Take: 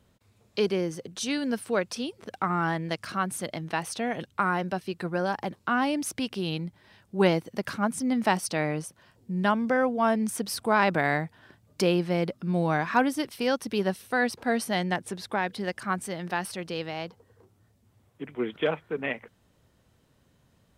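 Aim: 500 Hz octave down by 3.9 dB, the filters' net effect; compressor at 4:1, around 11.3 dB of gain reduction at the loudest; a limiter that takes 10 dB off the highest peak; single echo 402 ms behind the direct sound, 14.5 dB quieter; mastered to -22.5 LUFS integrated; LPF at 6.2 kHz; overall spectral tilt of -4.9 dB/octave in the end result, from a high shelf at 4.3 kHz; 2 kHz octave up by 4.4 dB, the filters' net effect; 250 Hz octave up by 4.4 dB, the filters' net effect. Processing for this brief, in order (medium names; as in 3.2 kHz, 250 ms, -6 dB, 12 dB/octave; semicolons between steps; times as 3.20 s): low-pass 6.2 kHz; peaking EQ 250 Hz +7.5 dB; peaking EQ 500 Hz -8 dB; peaking EQ 2 kHz +5.5 dB; treble shelf 4.3 kHz +4 dB; compression 4:1, threshold -31 dBFS; peak limiter -25 dBFS; delay 402 ms -14.5 dB; trim +13 dB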